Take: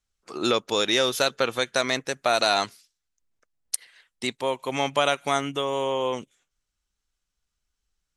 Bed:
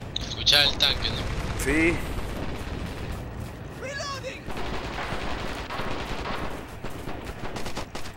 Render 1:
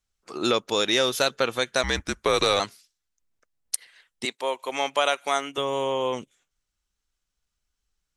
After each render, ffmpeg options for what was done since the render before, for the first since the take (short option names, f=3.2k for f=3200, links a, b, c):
-filter_complex "[0:a]asettb=1/sr,asplit=3[a][b][c];[a]atrim=end=1.834[d];[b]atrim=start=1.83:end=2.6,asetpts=PTS-STARTPTS,afade=t=in:d=0.004:c=qsin,afade=t=out:st=0.766:d=0.004:c=qsin,afreqshift=-190[e];[c]atrim=start=2.596[f];[d][e]acrossfade=d=0.004:c1=hsin:c2=qsin[g];[g][f]acrossfade=d=0.004:c1=qsin:c2=hsin,asettb=1/sr,asplit=3[h][i][j];[h]atrim=end=4.254[k];[i]atrim=start=4.25:end=5.58,asetpts=PTS-STARTPTS,afade=t=in:d=0.004:c=qsin,afade=t=out:st=1.326:d=0.004:c=qsin,highpass=400[l];[j]atrim=start=5.576[m];[k][l]acrossfade=d=0.004:c1=hsin:c2=qsin[n];[n][m]acrossfade=d=0.004:c1=qsin:c2=hsin"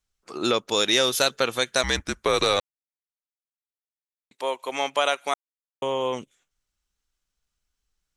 -filter_complex "[0:a]asettb=1/sr,asplit=3[a][b][c];[a]atrim=end=0.714[d];[b]atrim=start=0.71:end=1.97,asetpts=PTS-STARTPTS,afade=t=in:d=0.004:c=qsin,afade=t=out:st=1.256:d=0.004:c=qsin,highshelf=f=4.1k:g=6[e];[c]atrim=start=1.966[f];[d][e]acrossfade=d=0.004:c1=hsin:c2=qsin[g];[g][f]acrossfade=d=0.004:c1=qsin:c2=hsin,asplit=5[h][i][j][k][l];[h]atrim=end=2.6,asetpts=PTS-STARTPTS,afade=t=out:st=2.596:d=0.004:c=hsin[m];[i]atrim=start=2.6:end=4.31,asetpts=PTS-STARTPTS,volume=0[n];[j]atrim=start=4.31:end=5.34,asetpts=PTS-STARTPTS,afade=t=in:d=0.004:c=hsin,afade=t=out:st=1.026:d=0.004:c=hsin[o];[k]atrim=start=5.34:end=5.82,asetpts=PTS-STARTPTS,volume=0[p];[l]atrim=start=5.82,asetpts=PTS-STARTPTS,afade=t=in:d=0.004:c=hsin[q];[m][n][o][p][q]concat=n=5:v=0:a=1"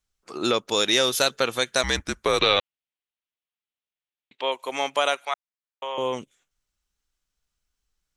-filter_complex "[0:a]asettb=1/sr,asplit=3[a][b][c];[a]atrim=end=2.394[d];[b]atrim=start=2.39:end=4.52,asetpts=PTS-STARTPTS,afade=t=in:d=0.004:c=qsin,afade=t=out:st=2.126:d=0.004:c=qsin,lowpass=f=3.1k:t=q:w=2.6[e];[c]atrim=start=4.516[f];[d][e]acrossfade=d=0.004:c1=hsin:c2=qsin[g];[g][f]acrossfade=d=0.004:c1=qsin:c2=hsin,asettb=1/sr,asplit=3[h][i][j];[h]atrim=end=5.254[k];[i]atrim=start=5.25:end=5.98,asetpts=PTS-STARTPTS,afade=t=in:d=0.004:c=qsin,afade=t=out:st=0.726:d=0.004:c=qsin,acrossover=split=580 5000:gain=0.0631 1 0.112[l][m][n];[l][m][n]amix=inputs=3:normalize=0[o];[j]atrim=start=5.976[p];[k][o]acrossfade=d=0.004:c1=hsin:c2=qsin[q];[q][p]acrossfade=d=0.004:c1=qsin:c2=hsin"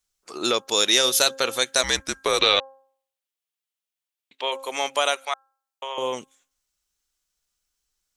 -af "bass=f=250:g=-7,treble=f=4k:g=7,bandreject=f=267.8:t=h:w=4,bandreject=f=535.6:t=h:w=4,bandreject=f=803.4:t=h:w=4,bandreject=f=1.0712k:t=h:w=4,bandreject=f=1.339k:t=h:w=4,bandreject=f=1.6068k:t=h:w=4"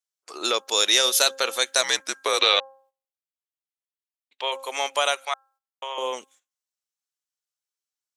-af "highpass=440,agate=range=-13dB:threshold=-56dB:ratio=16:detection=peak"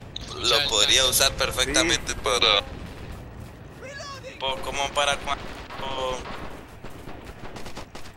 -filter_complex "[1:a]volume=-4.5dB[a];[0:a][a]amix=inputs=2:normalize=0"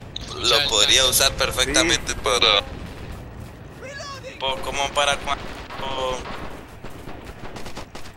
-af "volume=3dB,alimiter=limit=-2dB:level=0:latency=1"